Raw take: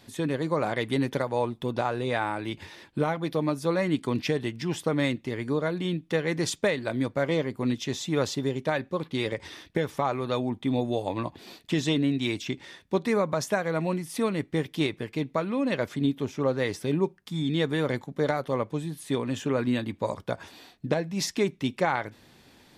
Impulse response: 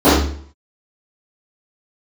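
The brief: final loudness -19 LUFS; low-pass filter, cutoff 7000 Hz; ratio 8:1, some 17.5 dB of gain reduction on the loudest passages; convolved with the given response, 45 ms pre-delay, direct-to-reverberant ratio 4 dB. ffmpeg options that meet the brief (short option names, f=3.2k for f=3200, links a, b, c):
-filter_complex "[0:a]lowpass=7k,acompressor=threshold=-39dB:ratio=8,asplit=2[a][b];[1:a]atrim=start_sample=2205,adelay=45[c];[b][c]afir=irnorm=-1:irlink=0,volume=-34dB[d];[a][d]amix=inputs=2:normalize=0,volume=19.5dB"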